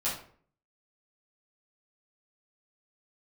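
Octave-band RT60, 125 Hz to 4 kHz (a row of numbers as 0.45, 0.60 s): 0.65, 0.60, 0.55, 0.50, 0.40, 0.35 s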